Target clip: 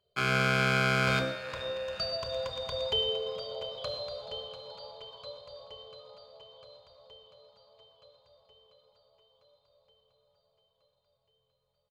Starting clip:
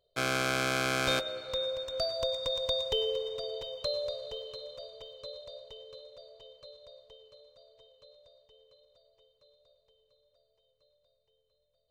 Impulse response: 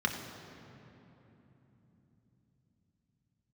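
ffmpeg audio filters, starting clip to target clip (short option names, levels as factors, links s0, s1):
-filter_complex "[0:a]asplit=6[s0][s1][s2][s3][s4][s5];[s1]adelay=429,afreqshift=130,volume=0.112[s6];[s2]adelay=858,afreqshift=260,volume=0.0661[s7];[s3]adelay=1287,afreqshift=390,volume=0.0389[s8];[s4]adelay=1716,afreqshift=520,volume=0.0232[s9];[s5]adelay=2145,afreqshift=650,volume=0.0136[s10];[s0][s6][s7][s8][s9][s10]amix=inputs=6:normalize=0[s11];[1:a]atrim=start_sample=2205,afade=t=out:st=0.19:d=0.01,atrim=end_sample=8820,asetrate=36603,aresample=44100[s12];[s11][s12]afir=irnorm=-1:irlink=0,volume=0.473"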